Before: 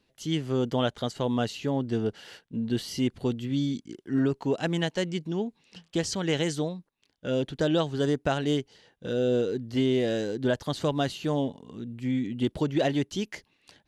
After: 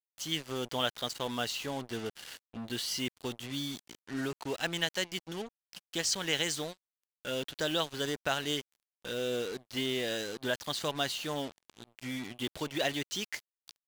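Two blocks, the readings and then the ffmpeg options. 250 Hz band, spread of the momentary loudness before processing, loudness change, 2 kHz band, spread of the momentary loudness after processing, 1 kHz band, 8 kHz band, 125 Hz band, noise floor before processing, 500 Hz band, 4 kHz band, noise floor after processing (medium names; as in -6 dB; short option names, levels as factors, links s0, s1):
-11.5 dB, 8 LU, -6.0 dB, +1.0 dB, 11 LU, -3.5 dB, +3.5 dB, -13.0 dB, -72 dBFS, -8.5 dB, +2.5 dB, under -85 dBFS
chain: -af "tiltshelf=f=760:g=-8.5,acrusher=bits=5:mix=0:aa=0.5,volume=0.562"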